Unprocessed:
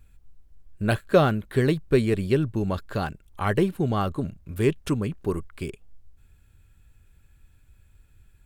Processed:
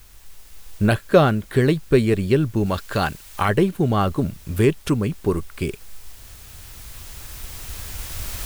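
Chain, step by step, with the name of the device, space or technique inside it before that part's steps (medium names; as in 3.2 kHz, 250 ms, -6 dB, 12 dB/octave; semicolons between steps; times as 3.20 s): cheap recorder with automatic gain (white noise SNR 30 dB; recorder AGC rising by 5.8 dB/s); 2.66–3.49 s: tilt shelf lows -3.5 dB; trim +4 dB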